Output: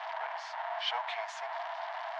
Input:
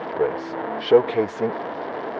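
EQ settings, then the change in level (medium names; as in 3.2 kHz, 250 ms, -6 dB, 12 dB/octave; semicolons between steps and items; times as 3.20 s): rippled Chebyshev high-pass 650 Hz, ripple 3 dB; treble shelf 4.1 kHz +11 dB; -5.5 dB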